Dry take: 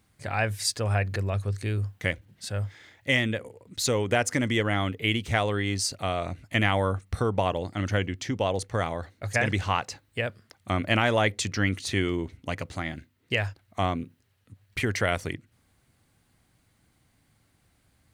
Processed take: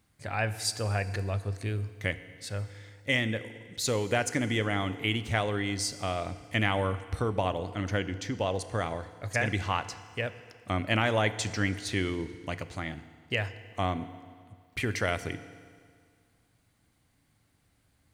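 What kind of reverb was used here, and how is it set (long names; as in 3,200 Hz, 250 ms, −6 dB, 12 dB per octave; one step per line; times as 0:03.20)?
feedback delay network reverb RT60 2 s, low-frequency decay 0.95×, high-frequency decay 0.9×, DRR 12 dB
level −3.5 dB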